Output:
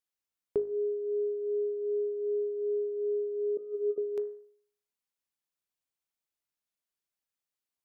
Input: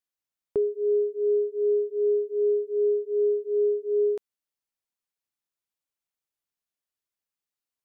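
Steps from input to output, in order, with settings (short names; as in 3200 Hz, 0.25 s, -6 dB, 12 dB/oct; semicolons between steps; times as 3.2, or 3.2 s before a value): 3.57–3.98 negative-ratio compressor -26 dBFS, ratio -0.5; de-hum 51.89 Hz, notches 38; gain -1.5 dB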